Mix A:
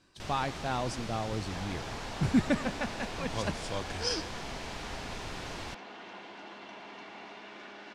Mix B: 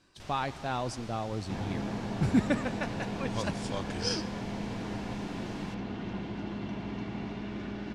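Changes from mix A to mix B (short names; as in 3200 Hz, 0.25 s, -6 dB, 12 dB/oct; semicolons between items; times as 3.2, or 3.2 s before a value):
first sound -6.5 dB; second sound: remove HPF 650 Hz 12 dB/oct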